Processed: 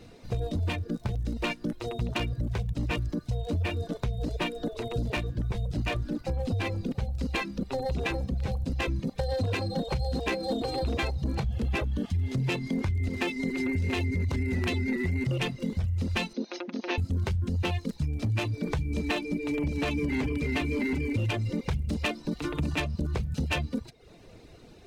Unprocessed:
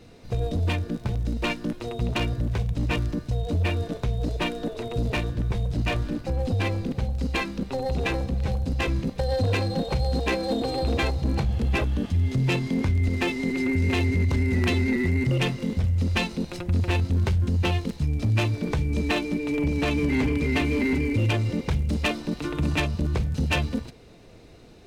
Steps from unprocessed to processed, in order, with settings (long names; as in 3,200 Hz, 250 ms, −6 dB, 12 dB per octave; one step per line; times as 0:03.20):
0:16.33–0:16.98: linear-phase brick-wall band-pass 200–6,600 Hz
reverb reduction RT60 0.6 s
downward compressor 2 to 1, threshold −28 dBFS, peak gain reduction 5 dB